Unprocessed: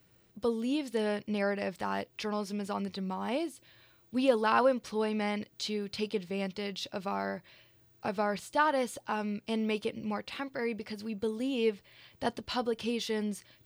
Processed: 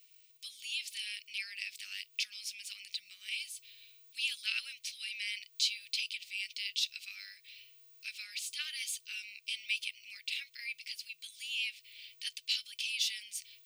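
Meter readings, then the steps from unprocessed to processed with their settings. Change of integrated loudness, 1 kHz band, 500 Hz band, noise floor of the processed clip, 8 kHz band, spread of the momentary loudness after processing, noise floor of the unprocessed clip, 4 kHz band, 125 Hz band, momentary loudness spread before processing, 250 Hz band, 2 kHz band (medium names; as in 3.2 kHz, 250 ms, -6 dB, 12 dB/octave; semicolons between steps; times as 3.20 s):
-4.5 dB, under -35 dB, under -40 dB, -65 dBFS, +7.0 dB, 14 LU, -65 dBFS, +6.5 dB, under -40 dB, 9 LU, under -40 dB, -1.0 dB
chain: elliptic high-pass 2.4 kHz, stop band 60 dB; trim +7 dB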